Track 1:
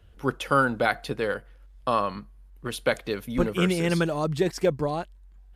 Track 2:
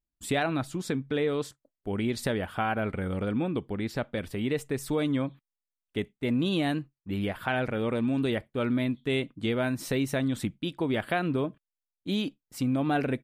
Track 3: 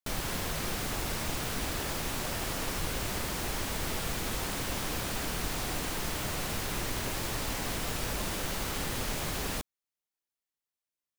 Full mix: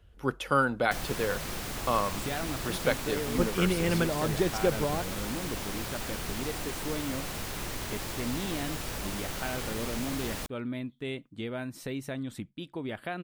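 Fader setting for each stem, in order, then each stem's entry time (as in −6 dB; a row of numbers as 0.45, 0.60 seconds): −3.5, −8.0, −2.5 decibels; 0.00, 1.95, 0.85 seconds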